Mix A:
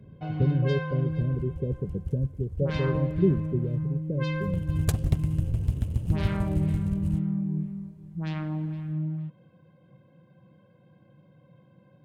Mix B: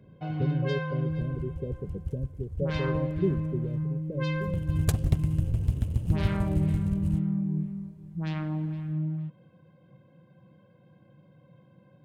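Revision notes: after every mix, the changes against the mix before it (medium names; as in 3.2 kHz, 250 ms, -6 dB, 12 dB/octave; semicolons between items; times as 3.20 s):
speech: add bass shelf 340 Hz -7.5 dB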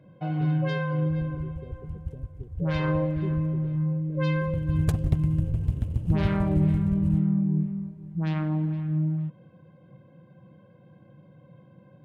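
speech -10.0 dB; first sound +4.5 dB; master: add treble shelf 3.2 kHz -8.5 dB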